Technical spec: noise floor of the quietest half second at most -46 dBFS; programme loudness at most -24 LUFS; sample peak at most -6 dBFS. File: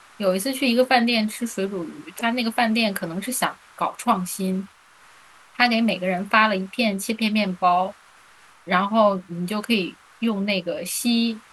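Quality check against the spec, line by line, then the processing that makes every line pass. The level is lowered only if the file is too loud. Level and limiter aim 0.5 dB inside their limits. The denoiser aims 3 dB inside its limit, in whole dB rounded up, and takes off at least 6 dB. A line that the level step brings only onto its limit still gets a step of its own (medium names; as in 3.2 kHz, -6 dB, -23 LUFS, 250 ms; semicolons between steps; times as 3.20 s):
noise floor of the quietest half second -52 dBFS: pass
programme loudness -22.5 LUFS: fail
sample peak -4.0 dBFS: fail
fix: trim -2 dB; peak limiter -6.5 dBFS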